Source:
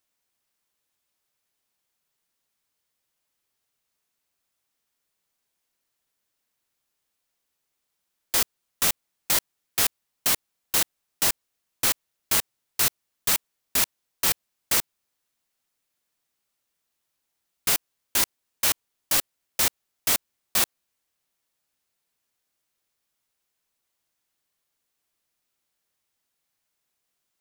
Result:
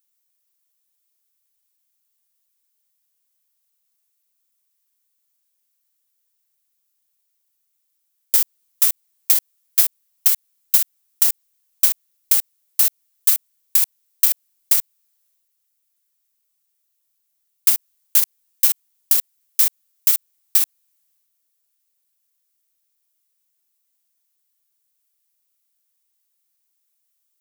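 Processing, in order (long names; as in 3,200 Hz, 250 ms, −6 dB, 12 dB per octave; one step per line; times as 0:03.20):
RIAA equalisation recording
brickwall limiter −1 dBFS, peak gain reduction 9 dB
transient designer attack +8 dB, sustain +4 dB
level −8 dB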